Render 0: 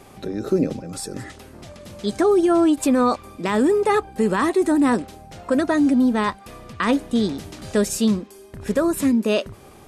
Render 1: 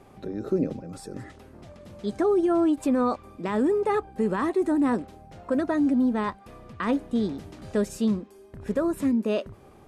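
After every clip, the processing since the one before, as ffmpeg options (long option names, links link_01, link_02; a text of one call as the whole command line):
ffmpeg -i in.wav -af "highshelf=frequency=2400:gain=-10.5,volume=-5dB" out.wav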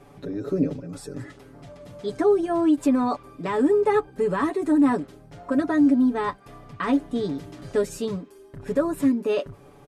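ffmpeg -i in.wav -af "aecho=1:1:7:0.85" out.wav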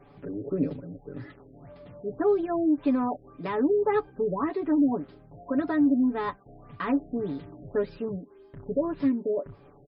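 ffmpeg -i in.wav -af "afftfilt=real='re*lt(b*sr/1024,740*pow(5400/740,0.5+0.5*sin(2*PI*1.8*pts/sr)))':imag='im*lt(b*sr/1024,740*pow(5400/740,0.5+0.5*sin(2*PI*1.8*pts/sr)))':win_size=1024:overlap=0.75,volume=-4dB" out.wav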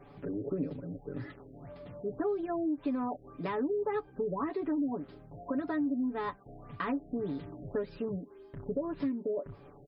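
ffmpeg -i in.wav -af "acompressor=threshold=-32dB:ratio=3" out.wav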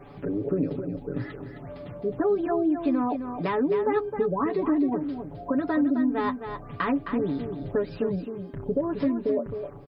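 ffmpeg -i in.wav -af "aecho=1:1:263:0.398,volume=7.5dB" out.wav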